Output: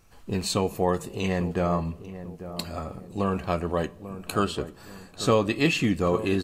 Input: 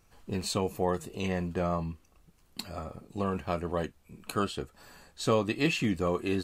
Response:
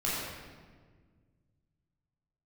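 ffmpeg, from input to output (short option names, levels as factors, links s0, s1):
-filter_complex "[0:a]asplit=2[s0][s1];[s1]adelay=843,lowpass=f=970:p=1,volume=0.251,asplit=2[s2][s3];[s3]adelay=843,lowpass=f=970:p=1,volume=0.42,asplit=2[s4][s5];[s5]adelay=843,lowpass=f=970:p=1,volume=0.42,asplit=2[s6][s7];[s7]adelay=843,lowpass=f=970:p=1,volume=0.42[s8];[s0][s2][s4][s6][s8]amix=inputs=5:normalize=0,asplit=2[s9][s10];[1:a]atrim=start_sample=2205,asetrate=83790,aresample=44100[s11];[s10][s11]afir=irnorm=-1:irlink=0,volume=0.0668[s12];[s9][s12]amix=inputs=2:normalize=0,volume=1.68"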